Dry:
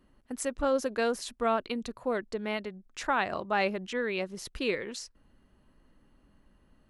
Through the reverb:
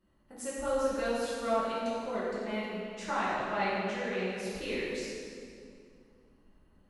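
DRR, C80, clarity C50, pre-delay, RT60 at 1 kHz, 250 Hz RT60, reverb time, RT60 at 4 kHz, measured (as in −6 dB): −9.5 dB, −1.0 dB, −3.0 dB, 4 ms, 2.2 s, 2.9 s, 2.4 s, 1.8 s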